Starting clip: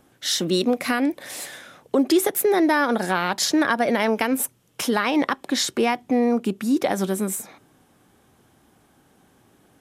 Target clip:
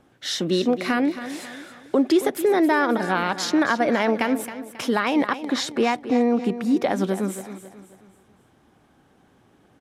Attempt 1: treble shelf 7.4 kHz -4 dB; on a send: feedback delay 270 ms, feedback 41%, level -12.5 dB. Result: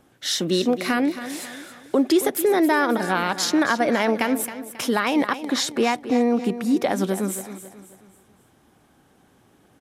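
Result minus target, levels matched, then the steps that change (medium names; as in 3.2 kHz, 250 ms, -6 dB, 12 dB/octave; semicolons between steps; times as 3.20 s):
8 kHz band +5.5 dB
change: treble shelf 7.4 kHz -15.5 dB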